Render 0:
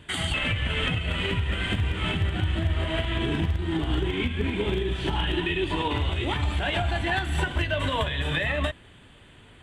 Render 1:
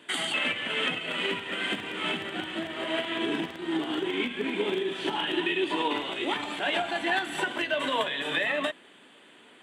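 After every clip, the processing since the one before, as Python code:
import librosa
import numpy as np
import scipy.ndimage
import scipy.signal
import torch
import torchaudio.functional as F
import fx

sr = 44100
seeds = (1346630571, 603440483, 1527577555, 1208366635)

y = scipy.signal.sosfilt(scipy.signal.butter(4, 240.0, 'highpass', fs=sr, output='sos'), x)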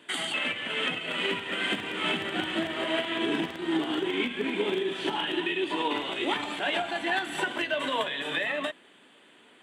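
y = fx.rider(x, sr, range_db=10, speed_s=0.5)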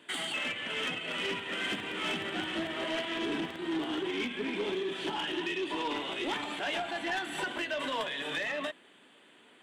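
y = 10.0 ** (-24.5 / 20.0) * np.tanh(x / 10.0 ** (-24.5 / 20.0))
y = F.gain(torch.from_numpy(y), -2.5).numpy()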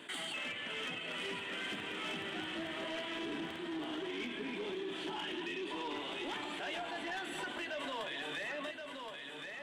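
y = x + 10.0 ** (-11.0 / 20.0) * np.pad(x, (int(1073 * sr / 1000.0), 0))[:len(x)]
y = fx.env_flatten(y, sr, amount_pct=50)
y = F.gain(torch.from_numpy(y), -8.5).numpy()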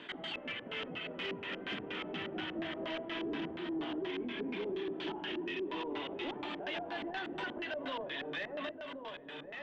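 y = fx.filter_lfo_lowpass(x, sr, shape='square', hz=4.2, low_hz=550.0, high_hz=5300.0, q=1.1)
y = fx.air_absorb(y, sr, metres=150.0)
y = F.gain(torch.from_numpy(y), 2.5).numpy()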